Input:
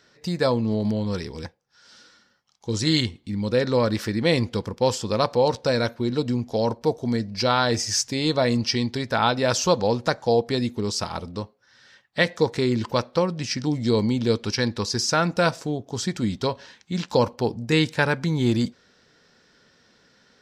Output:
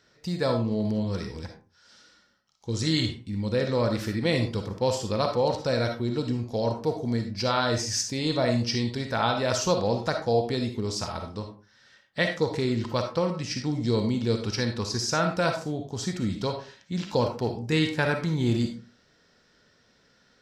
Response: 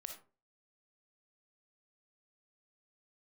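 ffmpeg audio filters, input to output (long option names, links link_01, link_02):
-filter_complex "[0:a]equalizer=frequency=62:width_type=o:width=2.4:gain=5[link_01];[1:a]atrim=start_sample=2205[link_02];[link_01][link_02]afir=irnorm=-1:irlink=0"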